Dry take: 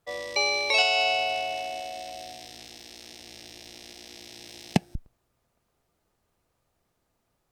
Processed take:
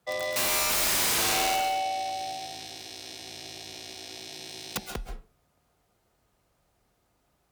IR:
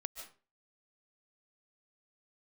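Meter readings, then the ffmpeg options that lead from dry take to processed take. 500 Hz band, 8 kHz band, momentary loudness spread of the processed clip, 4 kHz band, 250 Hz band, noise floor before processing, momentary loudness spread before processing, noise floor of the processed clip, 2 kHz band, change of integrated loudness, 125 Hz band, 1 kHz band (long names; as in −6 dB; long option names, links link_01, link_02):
−2.5 dB, +11.0 dB, 17 LU, −2.0 dB, −6.0 dB, −76 dBFS, 23 LU, −72 dBFS, −4.0 dB, −0.5 dB, −7.0 dB, +1.0 dB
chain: -filter_complex "[0:a]aeval=exprs='(mod(16.8*val(0)+1,2)-1)/16.8':channel_layout=same,afreqshift=28[link_01];[1:a]atrim=start_sample=2205,asetrate=48510,aresample=44100[link_02];[link_01][link_02]afir=irnorm=-1:irlink=0,volume=7dB"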